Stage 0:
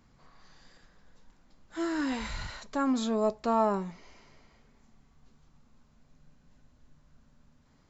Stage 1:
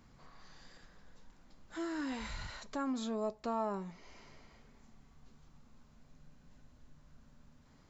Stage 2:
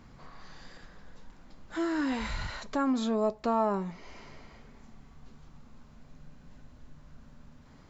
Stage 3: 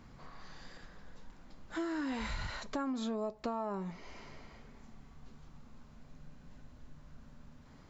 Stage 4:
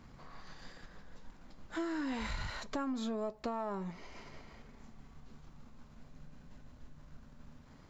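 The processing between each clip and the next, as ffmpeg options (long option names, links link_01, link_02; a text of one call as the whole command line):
ffmpeg -i in.wav -af "acompressor=threshold=-52dB:ratio=1.5,volume=1dB" out.wav
ffmpeg -i in.wav -af "highshelf=frequency=5900:gain=-8.5,volume=8.5dB" out.wav
ffmpeg -i in.wav -af "acompressor=threshold=-31dB:ratio=6,volume=-2dB" out.wav
ffmpeg -i in.wav -af "aeval=exprs='if(lt(val(0),0),0.708*val(0),val(0))':channel_layout=same,volume=1dB" out.wav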